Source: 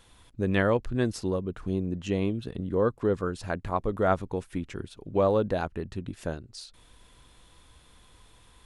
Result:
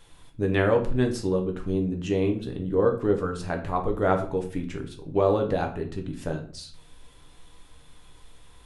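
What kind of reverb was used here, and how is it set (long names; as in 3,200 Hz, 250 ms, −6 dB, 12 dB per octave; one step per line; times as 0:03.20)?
rectangular room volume 42 cubic metres, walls mixed, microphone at 0.45 metres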